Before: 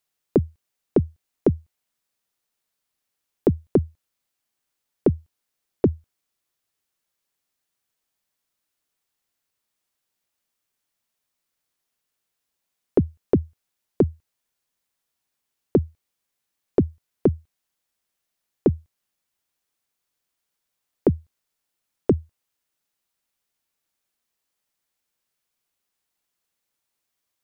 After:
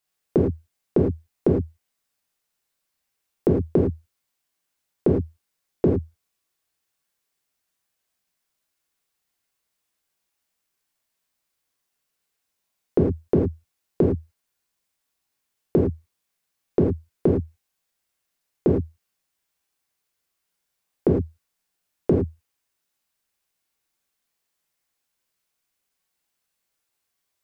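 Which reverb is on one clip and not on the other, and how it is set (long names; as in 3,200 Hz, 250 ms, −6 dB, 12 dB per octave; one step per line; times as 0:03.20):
reverb whose tail is shaped and stops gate 130 ms flat, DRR −2.5 dB
level −2.5 dB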